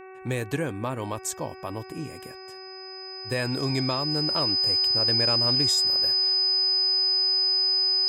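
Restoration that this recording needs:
hum removal 377.3 Hz, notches 7
notch filter 5,000 Hz, Q 30

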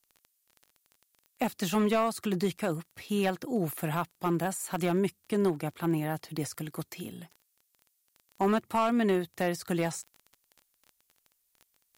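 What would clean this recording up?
clipped peaks rebuilt −19.5 dBFS
click removal
downward expander −67 dBFS, range −21 dB

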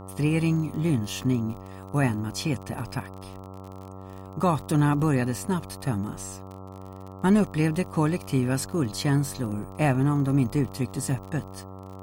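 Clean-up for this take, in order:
click removal
hum removal 95.1 Hz, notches 14

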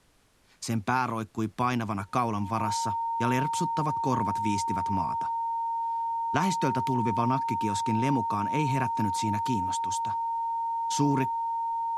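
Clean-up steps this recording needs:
notch filter 920 Hz, Q 30
downward expander −26 dBFS, range −21 dB

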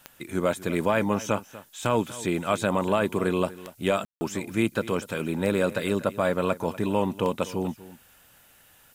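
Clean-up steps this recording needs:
click removal
ambience match 0:04.05–0:04.21
downward expander −49 dBFS, range −21 dB
echo removal 243 ms −17.5 dB

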